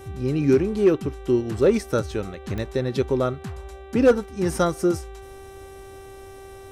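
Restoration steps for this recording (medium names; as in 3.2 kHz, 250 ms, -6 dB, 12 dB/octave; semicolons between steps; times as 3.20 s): clip repair -9.5 dBFS; de-click; de-hum 389.3 Hz, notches 10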